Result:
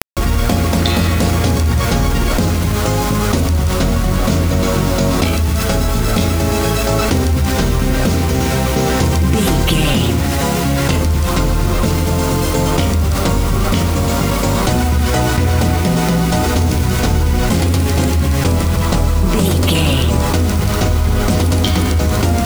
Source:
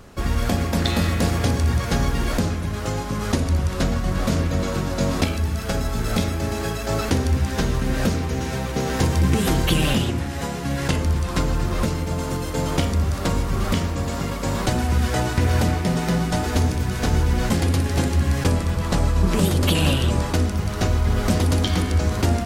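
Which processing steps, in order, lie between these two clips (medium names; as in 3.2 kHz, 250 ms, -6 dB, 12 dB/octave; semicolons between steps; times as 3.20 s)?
band-stop 1.7 kHz, Q 11; bit crusher 6-bit; level flattener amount 70%; trim +3 dB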